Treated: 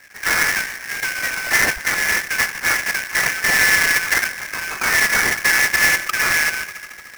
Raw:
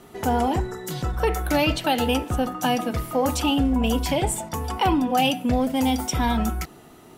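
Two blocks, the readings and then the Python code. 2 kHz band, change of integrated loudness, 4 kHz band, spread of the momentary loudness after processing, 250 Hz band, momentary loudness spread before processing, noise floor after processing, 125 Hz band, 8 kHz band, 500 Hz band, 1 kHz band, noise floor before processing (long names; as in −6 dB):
+18.5 dB, +6.5 dB, +5.5 dB, 10 LU, −14.5 dB, 7 LU, −38 dBFS, −11.0 dB, +12.0 dB, −7.5 dB, −2.5 dB, −48 dBFS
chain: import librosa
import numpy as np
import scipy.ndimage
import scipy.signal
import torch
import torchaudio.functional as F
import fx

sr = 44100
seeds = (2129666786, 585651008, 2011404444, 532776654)

y = fx.band_shuffle(x, sr, order='4123')
y = y + 0.57 * np.pad(y, (int(2.4 * sr / 1000.0), 0))[:len(y)]
y = fx.spec_topn(y, sr, count=8)
y = fx.air_absorb(y, sr, metres=140.0)
y = fx.echo_wet_bandpass(y, sr, ms=75, feedback_pct=85, hz=490.0, wet_db=-4)
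y = fx.sample_hold(y, sr, seeds[0], rate_hz=3800.0, jitter_pct=20)
y = y * 10.0 ** (4.0 / 20.0)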